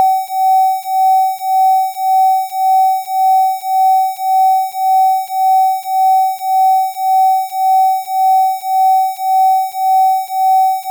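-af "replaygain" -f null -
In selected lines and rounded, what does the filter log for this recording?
track_gain = -5.2 dB
track_peak = 0.473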